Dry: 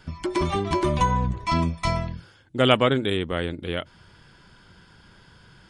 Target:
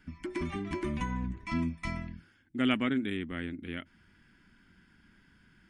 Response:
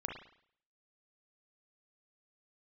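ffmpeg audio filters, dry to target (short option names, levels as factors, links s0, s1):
-af "equalizer=f=125:t=o:w=1:g=-8,equalizer=f=250:t=o:w=1:g=11,equalizer=f=500:t=o:w=1:g=-12,equalizer=f=1000:t=o:w=1:g=-7,equalizer=f=2000:t=o:w=1:g=7,equalizer=f=4000:t=o:w=1:g=-9,equalizer=f=8000:t=o:w=1:g=-4,volume=0.355"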